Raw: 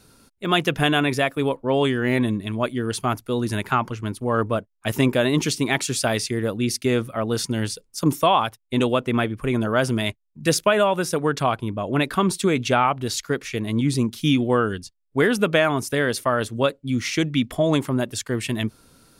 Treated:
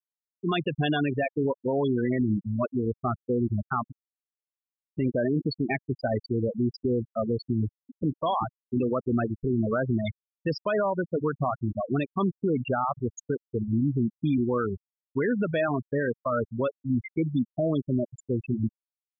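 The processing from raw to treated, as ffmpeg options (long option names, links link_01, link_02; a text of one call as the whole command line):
ffmpeg -i in.wav -filter_complex "[0:a]asplit=2[link_01][link_02];[link_02]afade=type=in:start_time=7.42:duration=0.01,afade=type=out:start_time=8.05:duration=0.01,aecho=0:1:390|780|1170|1560|1950|2340|2730|3120|3510|3900:0.334965|0.234476|0.164133|0.114893|0.0804252|0.0562976|0.0394083|0.0275858|0.0193101|0.0135171[link_03];[link_01][link_03]amix=inputs=2:normalize=0,asplit=3[link_04][link_05][link_06];[link_04]atrim=end=3.92,asetpts=PTS-STARTPTS,afade=type=out:start_time=3.916:duration=0.004:curve=hsin[link_07];[link_05]atrim=start=3.92:end=4.92,asetpts=PTS-STARTPTS,volume=0[link_08];[link_06]atrim=start=4.92,asetpts=PTS-STARTPTS,afade=type=in:duration=0.004:curve=hsin[link_09];[link_07][link_08][link_09]concat=n=3:v=0:a=1,afftfilt=real='re*gte(hypot(re,im),0.251)':imag='im*gte(hypot(re,im),0.251)':win_size=1024:overlap=0.75,bandreject=frequency=1700:width=20,alimiter=limit=-18dB:level=0:latency=1:release=74" out.wav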